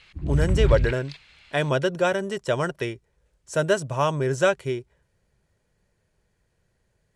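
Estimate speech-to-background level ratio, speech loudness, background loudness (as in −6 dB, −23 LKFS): 0.0 dB, −25.0 LKFS, −25.0 LKFS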